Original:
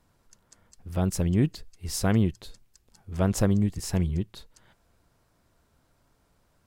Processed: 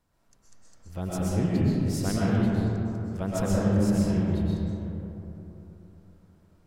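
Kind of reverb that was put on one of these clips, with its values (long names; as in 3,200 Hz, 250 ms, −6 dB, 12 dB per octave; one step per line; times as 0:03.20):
comb and all-pass reverb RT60 3.4 s, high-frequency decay 0.35×, pre-delay 85 ms, DRR −7.5 dB
level −7.5 dB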